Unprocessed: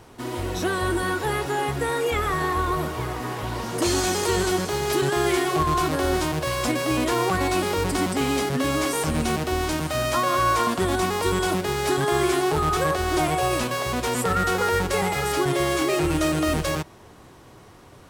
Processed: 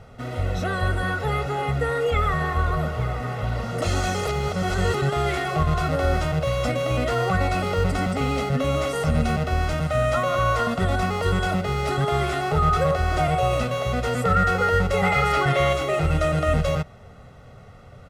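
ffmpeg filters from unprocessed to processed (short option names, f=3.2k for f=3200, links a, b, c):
-filter_complex "[0:a]asettb=1/sr,asplit=3[a][b][c];[a]atrim=end=15.034[d];[b]atrim=start=15.03:end=15.73,asetpts=PTS-STARTPTS,afade=t=in:d=0.004:c=qsin,afade=t=out:st=0.696:d=0.004:c=qsin,equalizer=f=1.7k:t=o:w=2.4:g=7[e];[c]atrim=start=15.726[f];[d][e]acrossfade=d=0.004:c1=hsin:c2=qsin[g];[g][f]acrossfade=d=0.004:c1=qsin:c2=hsin,asplit=3[h][i][j];[h]atrim=end=4.272[k];[i]atrim=start=4.268:end=4.942,asetpts=PTS-STARTPTS,areverse[l];[j]atrim=start=4.938[m];[k][l]acrossfade=d=0.004:c1=hsin:c2=hsin[n];[n][m]acrossfade=d=0.004:c1=hsin:c2=hsin,lowpass=f=1.5k:p=1,equalizer=f=800:w=1.8:g=-5,aecho=1:1:1.5:0.88,volume=2dB"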